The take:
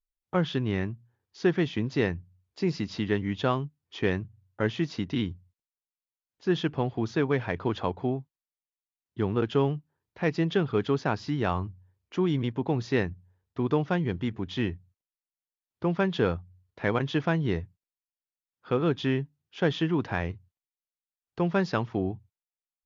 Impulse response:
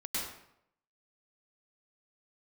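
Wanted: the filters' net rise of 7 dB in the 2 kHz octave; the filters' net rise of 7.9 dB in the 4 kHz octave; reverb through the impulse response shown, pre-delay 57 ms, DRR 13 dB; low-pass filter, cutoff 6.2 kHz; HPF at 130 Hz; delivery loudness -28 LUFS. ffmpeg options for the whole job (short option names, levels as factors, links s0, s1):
-filter_complex "[0:a]highpass=130,lowpass=6200,equalizer=f=2000:t=o:g=7,equalizer=f=4000:t=o:g=8,asplit=2[s0][s1];[1:a]atrim=start_sample=2205,adelay=57[s2];[s1][s2]afir=irnorm=-1:irlink=0,volume=0.141[s3];[s0][s3]amix=inputs=2:normalize=0,volume=0.944"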